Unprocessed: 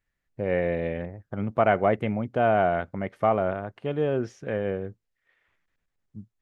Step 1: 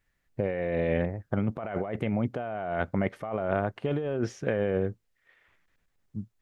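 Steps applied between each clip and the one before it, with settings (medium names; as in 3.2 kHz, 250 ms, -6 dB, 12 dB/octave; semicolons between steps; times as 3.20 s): compressor with a negative ratio -30 dBFS, ratio -1; trim +1 dB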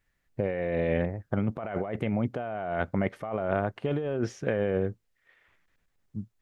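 no audible change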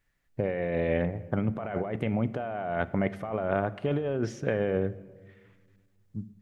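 simulated room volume 1400 m³, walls mixed, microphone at 0.32 m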